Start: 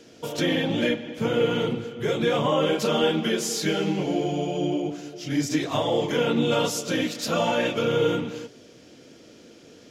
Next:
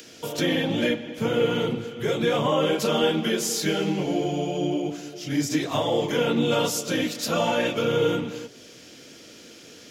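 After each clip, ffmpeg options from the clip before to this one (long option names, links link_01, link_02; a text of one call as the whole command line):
ffmpeg -i in.wav -filter_complex "[0:a]highshelf=frequency=12000:gain=9.5,acrossover=split=250|1300[link_01][link_02][link_03];[link_03]acompressor=mode=upward:threshold=-40dB:ratio=2.5[link_04];[link_01][link_02][link_04]amix=inputs=3:normalize=0" out.wav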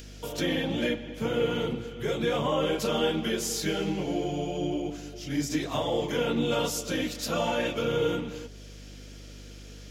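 ffmpeg -i in.wav -af "aeval=exprs='val(0)+0.01*(sin(2*PI*50*n/s)+sin(2*PI*2*50*n/s)/2+sin(2*PI*3*50*n/s)/3+sin(2*PI*4*50*n/s)/4+sin(2*PI*5*50*n/s)/5)':channel_layout=same,volume=-4.5dB" out.wav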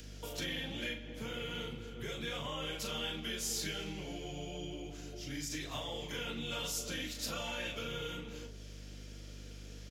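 ffmpeg -i in.wav -filter_complex "[0:a]asplit=2[link_01][link_02];[link_02]adelay=39,volume=-8dB[link_03];[link_01][link_03]amix=inputs=2:normalize=0,acrossover=split=110|1500|1900[link_04][link_05][link_06][link_07];[link_05]acompressor=threshold=-38dB:ratio=5[link_08];[link_04][link_08][link_06][link_07]amix=inputs=4:normalize=0,volume=-5.5dB" out.wav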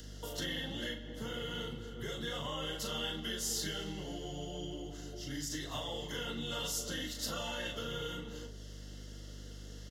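ffmpeg -i in.wav -af "asuperstop=centerf=2400:order=12:qfactor=4.9,volume=1dB" out.wav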